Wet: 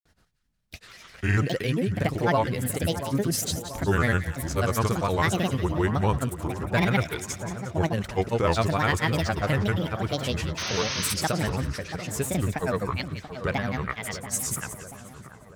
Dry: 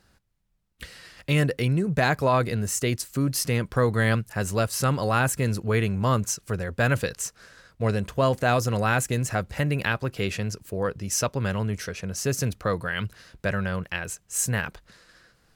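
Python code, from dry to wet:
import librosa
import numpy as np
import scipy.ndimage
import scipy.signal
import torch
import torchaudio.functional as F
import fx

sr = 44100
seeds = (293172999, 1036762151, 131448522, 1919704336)

y = fx.granulator(x, sr, seeds[0], grain_ms=100.0, per_s=20.0, spray_ms=100.0, spread_st=7)
y = fx.spec_paint(y, sr, seeds[1], shape='noise', start_s=10.57, length_s=0.57, low_hz=890.0, high_hz=6500.0, level_db=-31.0)
y = fx.echo_split(y, sr, split_hz=1500.0, low_ms=684, high_ms=178, feedback_pct=52, wet_db=-11.0)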